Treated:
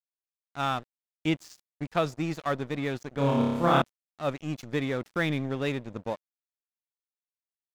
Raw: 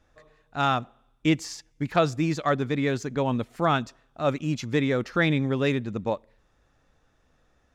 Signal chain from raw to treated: 3.14–3.82 s: flutter echo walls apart 5 m, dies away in 1.4 s; crossover distortion -37 dBFS; wow and flutter 21 cents; trim -4 dB

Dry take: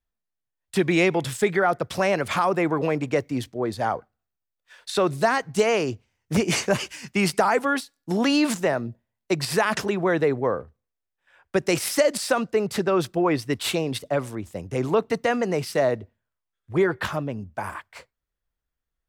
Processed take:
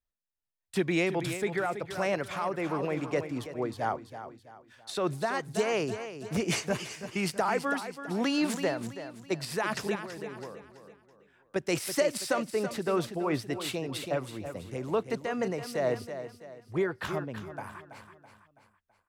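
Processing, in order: 9.95–11.56 s: compression 2.5:1, threshold -38 dBFS, peak gain reduction 14 dB; on a send: feedback delay 329 ms, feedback 41%, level -10 dB; on the sum: random flutter of the level, depth 60%; trim -4.5 dB

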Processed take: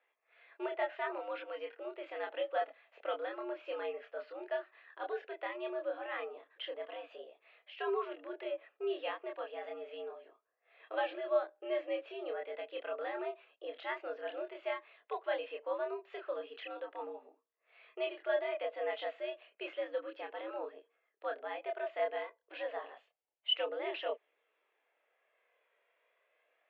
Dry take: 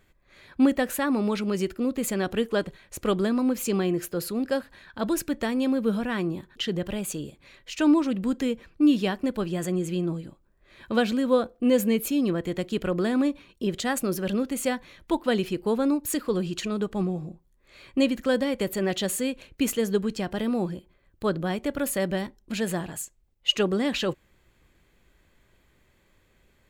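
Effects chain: chorus voices 4, 0.14 Hz, delay 27 ms, depth 1.1 ms; mistuned SSB +100 Hz 370–3000 Hz; trim -6 dB

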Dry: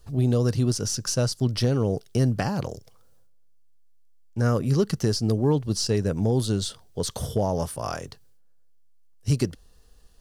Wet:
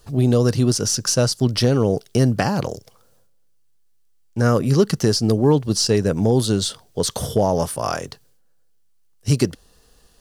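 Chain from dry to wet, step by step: bass shelf 83 Hz -11.5 dB; trim +7.5 dB

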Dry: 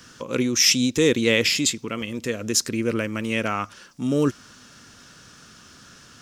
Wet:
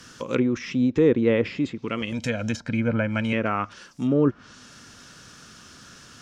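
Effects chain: low-pass that closes with the level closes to 1.2 kHz, closed at -18.5 dBFS; 2.12–3.33 s: comb 1.3 ms, depth 94%; trim +1 dB

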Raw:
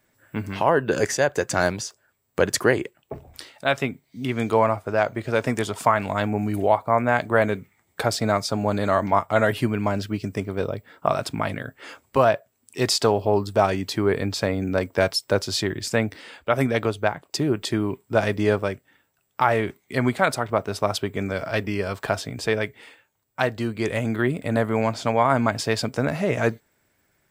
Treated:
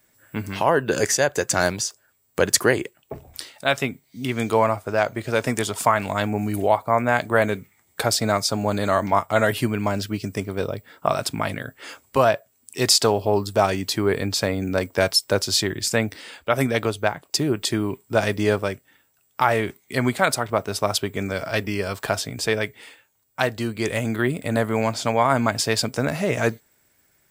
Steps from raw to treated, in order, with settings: treble shelf 4.2 kHz +9.5 dB

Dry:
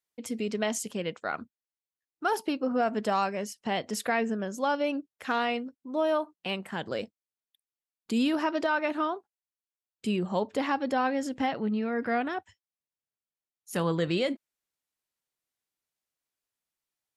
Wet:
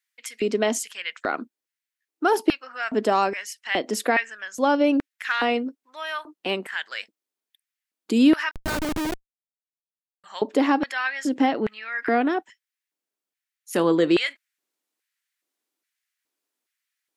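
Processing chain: LFO high-pass square 1.2 Hz 300–1800 Hz; 8.51–10.24 s: Schmitt trigger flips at -25.5 dBFS; trim +5 dB

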